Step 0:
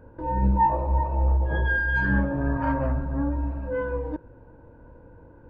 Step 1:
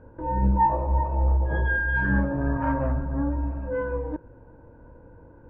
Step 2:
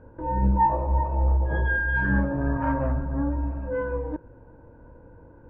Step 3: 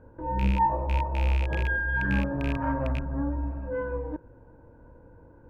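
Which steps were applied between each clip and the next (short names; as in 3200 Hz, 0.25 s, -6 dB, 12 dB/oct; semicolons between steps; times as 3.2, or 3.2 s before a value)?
LPF 2400 Hz 12 dB/oct
nothing audible
rattling part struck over -21 dBFS, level -21 dBFS; gain -3 dB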